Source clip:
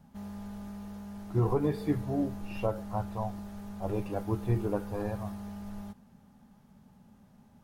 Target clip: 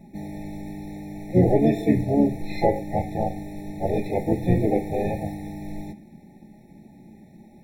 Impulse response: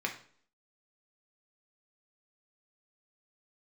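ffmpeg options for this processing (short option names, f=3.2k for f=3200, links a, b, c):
-filter_complex "[0:a]asplit=3[a][b][c];[b]asetrate=33038,aresample=44100,atempo=1.33484,volume=-7dB[d];[c]asetrate=66075,aresample=44100,atempo=0.66742,volume=-6dB[e];[a][d][e]amix=inputs=3:normalize=0,asplit=2[f][g];[1:a]atrim=start_sample=2205,afade=t=out:st=0.16:d=0.01,atrim=end_sample=7497[h];[g][h]afir=irnorm=-1:irlink=0,volume=-5dB[i];[f][i]amix=inputs=2:normalize=0,afftfilt=real='re*eq(mod(floor(b*sr/1024/870),2),0)':imag='im*eq(mod(floor(b*sr/1024/870),2),0)':win_size=1024:overlap=0.75,volume=4.5dB"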